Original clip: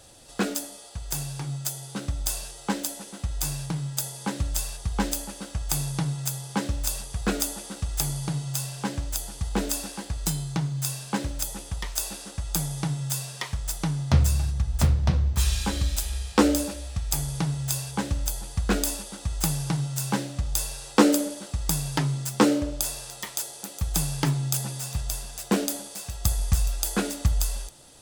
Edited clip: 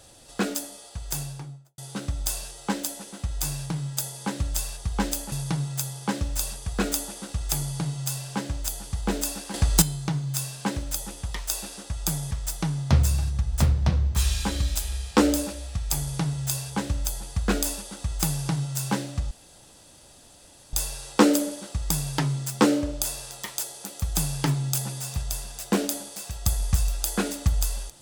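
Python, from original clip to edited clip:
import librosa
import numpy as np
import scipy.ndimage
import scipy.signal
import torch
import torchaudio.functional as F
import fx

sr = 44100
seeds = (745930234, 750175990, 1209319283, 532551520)

y = fx.studio_fade_out(x, sr, start_s=1.14, length_s=0.64)
y = fx.edit(y, sr, fx.cut(start_s=5.32, length_s=0.48),
    fx.clip_gain(start_s=10.02, length_s=0.28, db=9.5),
    fx.cut(start_s=12.79, length_s=0.73),
    fx.insert_room_tone(at_s=20.52, length_s=1.42), tone=tone)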